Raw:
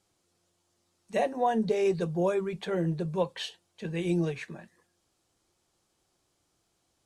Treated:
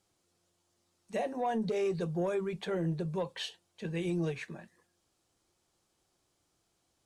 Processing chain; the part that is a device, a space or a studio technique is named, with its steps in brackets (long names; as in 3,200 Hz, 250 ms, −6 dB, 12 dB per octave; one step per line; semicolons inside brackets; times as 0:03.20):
soft clipper into limiter (soft clipping −17 dBFS, distortion −24 dB; brickwall limiter −23.5 dBFS, peak gain reduction 5 dB)
level −2 dB